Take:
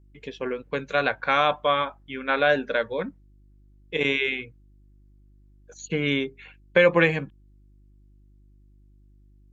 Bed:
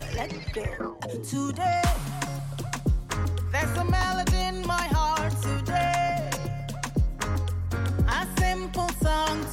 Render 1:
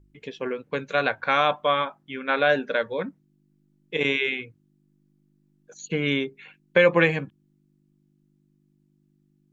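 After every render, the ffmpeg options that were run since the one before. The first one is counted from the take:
-af "bandreject=f=50:t=h:w=4,bandreject=f=100:t=h:w=4"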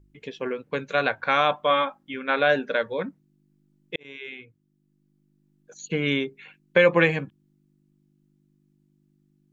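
-filter_complex "[0:a]asettb=1/sr,asplit=3[a][b][c];[a]atrim=end=1.704[d];[b]atrim=start=1.7:end=2.14,asetpts=PTS-STARTPTS,afade=t=in:d=0.004:c=qsin,afade=t=out:st=0.436:d=0.004:c=qsin,aecho=1:1:3.7:0.53,atrim=end_sample=19404[e];[c]atrim=start=2.136[f];[d][e]acrossfade=d=0.004:c1=hsin:c2=qsin[g];[g][f]acrossfade=d=0.004:c1=qsin:c2=hsin,asplit=2[h][i];[h]atrim=end=3.96,asetpts=PTS-STARTPTS,afade=t=out:st=3.956:d=0.004:c=hsin[j];[i]atrim=start=3.96,asetpts=PTS-STARTPTS,afade=t=in:d=2.02:c=qsin[k];[j][k]concat=n=2:v=0:a=1"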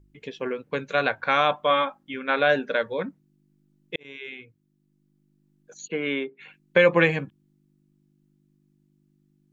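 -filter_complex "[0:a]asplit=3[a][b][c];[a]afade=t=out:st=5.87:d=0.02[d];[b]highpass=300,lowpass=2.5k,afade=t=in:st=5.87:d=0.02,afade=t=out:st=6.39:d=0.02[e];[c]afade=t=in:st=6.39:d=0.02[f];[d][e][f]amix=inputs=3:normalize=0"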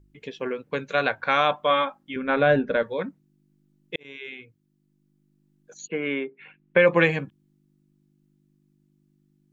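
-filter_complex "[0:a]asettb=1/sr,asplit=3[a][b][c];[a]atrim=end=2.164[d];[b]atrim=start=2.16:end=2.83,asetpts=PTS-STARTPTS,afade=t=in:d=0.004:c=qsin,afade=t=out:st=0.666:d=0.004:c=qsin,aemphasis=mode=reproduction:type=riaa[e];[c]atrim=start=2.826[f];[d][e]acrossfade=d=0.004:c1=hsin:c2=qsin[g];[g][f]acrossfade=d=0.004:c1=qsin:c2=hsin,asplit=3[h][i][j];[h]afade=t=out:st=5.86:d=0.02[k];[i]lowpass=f=2.9k:w=0.5412,lowpass=f=2.9k:w=1.3066,afade=t=in:st=5.86:d=0.02,afade=t=out:st=6.86:d=0.02[l];[j]afade=t=in:st=6.86:d=0.02[m];[k][l][m]amix=inputs=3:normalize=0"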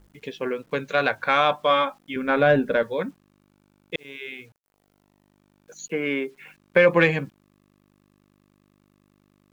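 -filter_complex "[0:a]asplit=2[a][b];[b]asoftclip=type=tanh:threshold=-18dB,volume=-11.5dB[c];[a][c]amix=inputs=2:normalize=0,acrusher=bits=9:mix=0:aa=0.000001"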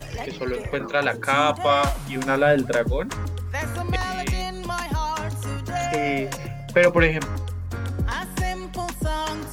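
-filter_complex "[1:a]volume=-1.5dB[a];[0:a][a]amix=inputs=2:normalize=0"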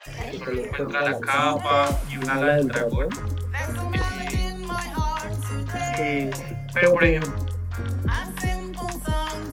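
-filter_complex "[0:a]asplit=2[a][b];[b]adelay=21,volume=-12dB[c];[a][c]amix=inputs=2:normalize=0,acrossover=split=730|4400[d][e][f];[f]adelay=30[g];[d]adelay=60[h];[h][e][g]amix=inputs=3:normalize=0"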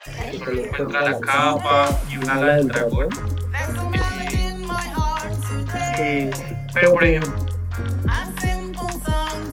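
-af "volume=3.5dB,alimiter=limit=-3dB:level=0:latency=1"

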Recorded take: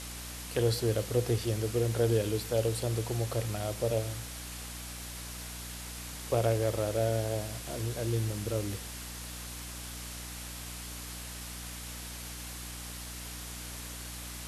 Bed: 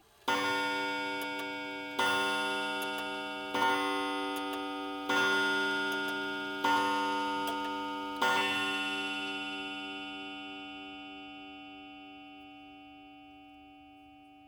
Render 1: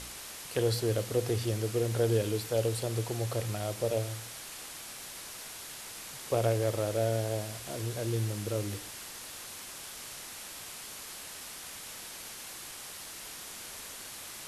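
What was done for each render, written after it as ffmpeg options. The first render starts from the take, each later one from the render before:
-af "bandreject=f=60:t=h:w=4,bandreject=f=120:t=h:w=4,bandreject=f=180:t=h:w=4,bandreject=f=240:t=h:w=4,bandreject=f=300:t=h:w=4"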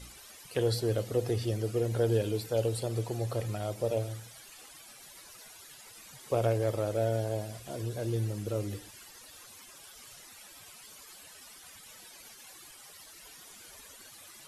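-af "afftdn=nr=14:nf=-45"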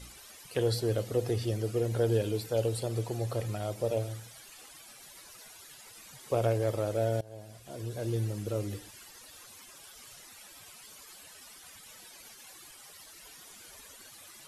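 -filter_complex "[0:a]asplit=2[a][b];[a]atrim=end=7.21,asetpts=PTS-STARTPTS,afade=t=out:st=7.206:d=0.004:c=hsin:silence=0.0841395[c];[b]atrim=start=7.21,asetpts=PTS-STARTPTS,afade=t=in:d=0.88:silence=0.0841395[d];[c][d]concat=n=2:v=0:a=1"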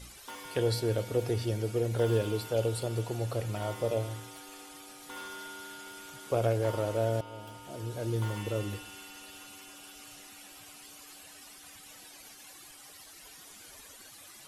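-filter_complex "[1:a]volume=-15dB[a];[0:a][a]amix=inputs=2:normalize=0"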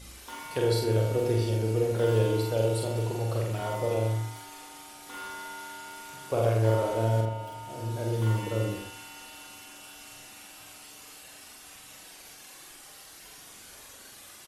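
-filter_complex "[0:a]asplit=2[a][b];[b]adelay=45,volume=-2.5dB[c];[a][c]amix=inputs=2:normalize=0,asplit=2[d][e];[e]adelay=81,lowpass=f=2k:p=1,volume=-4dB,asplit=2[f][g];[g]adelay=81,lowpass=f=2k:p=1,volume=0.29,asplit=2[h][i];[i]adelay=81,lowpass=f=2k:p=1,volume=0.29,asplit=2[j][k];[k]adelay=81,lowpass=f=2k:p=1,volume=0.29[l];[d][f][h][j][l]amix=inputs=5:normalize=0"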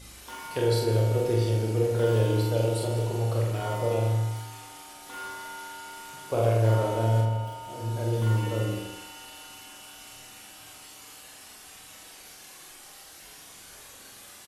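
-filter_complex "[0:a]asplit=2[a][b];[b]adelay=26,volume=-8dB[c];[a][c]amix=inputs=2:normalize=0,aecho=1:1:162|324|486:0.251|0.0628|0.0157"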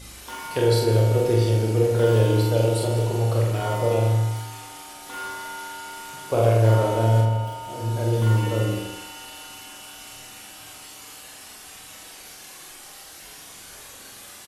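-af "volume=5dB"

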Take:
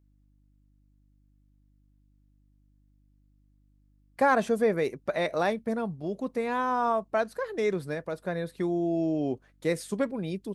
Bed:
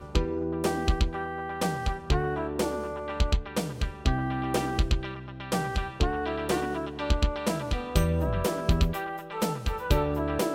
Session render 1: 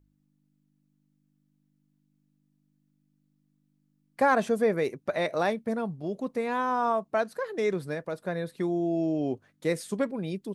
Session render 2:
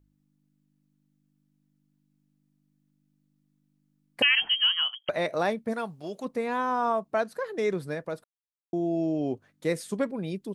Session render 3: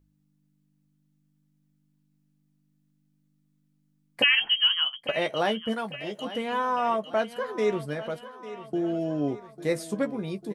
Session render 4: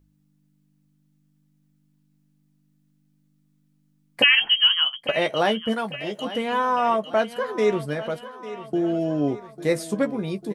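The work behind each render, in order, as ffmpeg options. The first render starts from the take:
-af "bandreject=f=50:t=h:w=4,bandreject=f=100:t=h:w=4"
-filter_complex "[0:a]asettb=1/sr,asplit=3[a][b][c];[a]atrim=end=4.224[d];[b]atrim=start=4.22:end=5.09,asetpts=PTS-STARTPTS,afade=t=in:d=0.004:c=qsin,afade=t=out:st=0.866:d=0.004:c=qsin,lowpass=f=2.9k:t=q:w=0.5098,lowpass=f=2.9k:t=q:w=0.6013,lowpass=f=2.9k:t=q:w=0.9,lowpass=f=2.9k:t=q:w=2.563,afreqshift=-3400[e];[c]atrim=start=5.086[f];[d][e]acrossfade=d=0.004:c1=hsin:c2=qsin[g];[g][f]acrossfade=d=0.004:c1=qsin:c2=hsin,asplit=3[h][i][j];[h]afade=t=out:st=5.72:d=0.02[k];[i]tiltshelf=f=650:g=-8.5,afade=t=in:st=5.72:d=0.02,afade=t=out:st=6.24:d=0.02[l];[j]afade=t=in:st=6.24:d=0.02[m];[k][l][m]amix=inputs=3:normalize=0,asplit=3[n][o][p];[n]atrim=end=8.24,asetpts=PTS-STARTPTS,afade=t=out:st=8.236:d=0.004:c=hsin[q];[o]atrim=start=8.24:end=8.73,asetpts=PTS-STARTPTS,volume=0[r];[p]atrim=start=8.73,asetpts=PTS-STARTPTS,afade=t=in:d=0.004:c=hsin[s];[q][r][s]concat=n=3:v=0:a=1"
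-filter_complex "[0:a]asplit=2[a][b];[b]adelay=14,volume=-7.5dB[c];[a][c]amix=inputs=2:normalize=0,aecho=1:1:848|1696|2544|3392|4240:0.178|0.0996|0.0558|0.0312|0.0175"
-af "volume=4.5dB"

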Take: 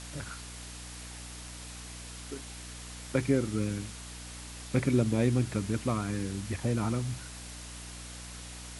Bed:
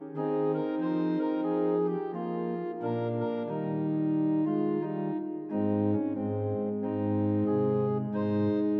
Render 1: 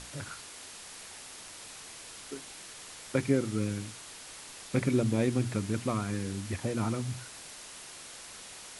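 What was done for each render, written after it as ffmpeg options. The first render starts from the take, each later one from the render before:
-af "bandreject=f=60:t=h:w=6,bandreject=f=120:t=h:w=6,bandreject=f=180:t=h:w=6,bandreject=f=240:t=h:w=6,bandreject=f=300:t=h:w=6"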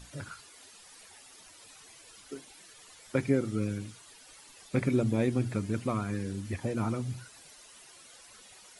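-af "afftdn=nr=12:nf=-47"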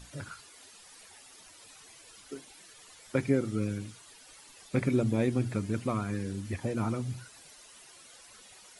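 -af anull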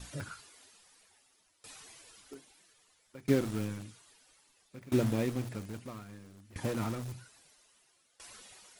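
-filter_complex "[0:a]asplit=2[a][b];[b]aeval=exprs='(mod(35.5*val(0)+1,2)-1)/35.5':c=same,volume=-7dB[c];[a][c]amix=inputs=2:normalize=0,aeval=exprs='val(0)*pow(10,-23*if(lt(mod(0.61*n/s,1),2*abs(0.61)/1000),1-mod(0.61*n/s,1)/(2*abs(0.61)/1000),(mod(0.61*n/s,1)-2*abs(0.61)/1000)/(1-2*abs(0.61)/1000))/20)':c=same"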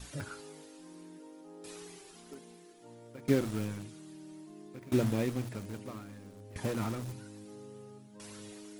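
-filter_complex "[1:a]volume=-22.5dB[a];[0:a][a]amix=inputs=2:normalize=0"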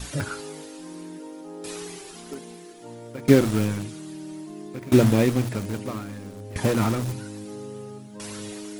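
-af "volume=12dB"

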